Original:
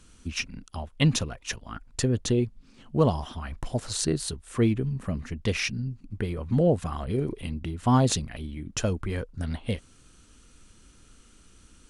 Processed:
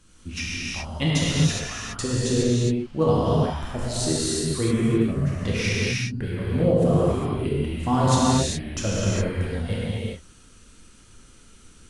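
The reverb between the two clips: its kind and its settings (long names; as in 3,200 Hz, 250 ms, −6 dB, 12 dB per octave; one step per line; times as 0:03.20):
reverb whose tail is shaped and stops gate 440 ms flat, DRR −8 dB
level −3.5 dB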